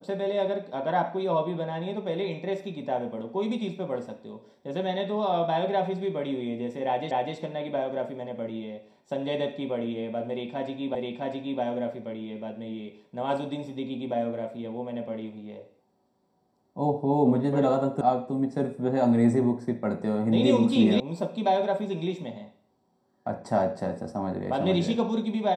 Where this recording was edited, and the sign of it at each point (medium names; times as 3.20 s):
7.11 s: repeat of the last 0.25 s
10.95 s: repeat of the last 0.66 s
18.01 s: sound stops dead
21.00 s: sound stops dead